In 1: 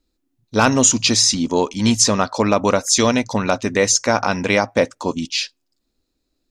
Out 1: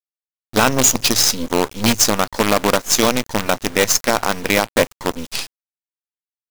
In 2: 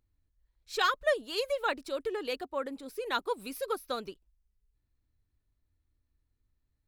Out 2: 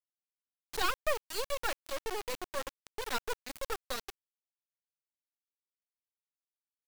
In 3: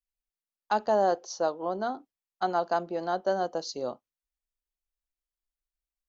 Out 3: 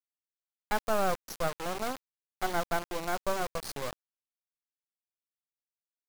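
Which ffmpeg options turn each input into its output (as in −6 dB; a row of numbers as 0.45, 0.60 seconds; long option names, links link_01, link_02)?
-af "acrusher=bits=3:dc=4:mix=0:aa=0.000001"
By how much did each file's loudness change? 0.0, −4.0, −4.0 LU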